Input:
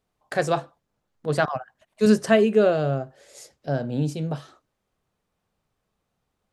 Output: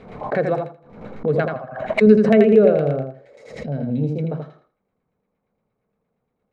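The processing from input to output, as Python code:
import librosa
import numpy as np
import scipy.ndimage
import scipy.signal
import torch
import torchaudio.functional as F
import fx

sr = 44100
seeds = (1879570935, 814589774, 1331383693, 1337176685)

p1 = fx.spec_box(x, sr, start_s=3.47, length_s=0.55, low_hz=260.0, high_hz=1800.0, gain_db=-9)
p2 = fx.filter_lfo_lowpass(p1, sr, shape='saw_down', hz=8.6, low_hz=720.0, high_hz=2300.0, q=1.4)
p3 = fx.high_shelf(p2, sr, hz=5400.0, db=11.0)
p4 = fx.small_body(p3, sr, hz=(210.0, 450.0, 2200.0, 3900.0), ring_ms=20, db=11)
p5 = fx.dynamic_eq(p4, sr, hz=970.0, q=1.7, threshold_db=-29.0, ratio=4.0, max_db=-6)
p6 = p5 + fx.echo_feedback(p5, sr, ms=82, feedback_pct=20, wet_db=-5.0, dry=0)
p7 = fx.pre_swell(p6, sr, db_per_s=74.0)
y = p7 * 10.0 ** (-5.5 / 20.0)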